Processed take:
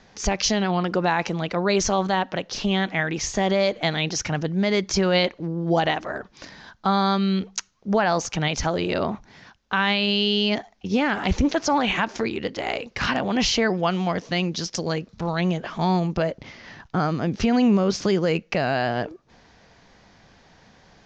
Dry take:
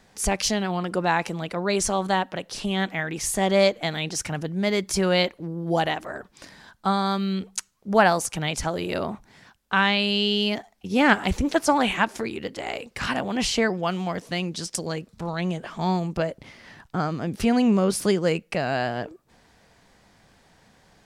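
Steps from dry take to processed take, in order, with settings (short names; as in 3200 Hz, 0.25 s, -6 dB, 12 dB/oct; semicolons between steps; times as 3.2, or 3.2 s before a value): steep low-pass 6700 Hz 72 dB/oct; limiter -15 dBFS, peak gain reduction 12 dB; gain +4 dB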